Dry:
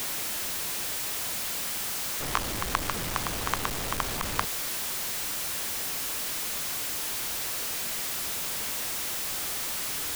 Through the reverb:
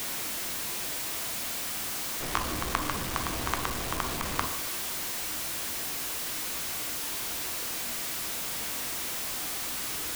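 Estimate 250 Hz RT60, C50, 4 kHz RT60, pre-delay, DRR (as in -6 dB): 0.95 s, 9.0 dB, 1.1 s, 3 ms, 5.0 dB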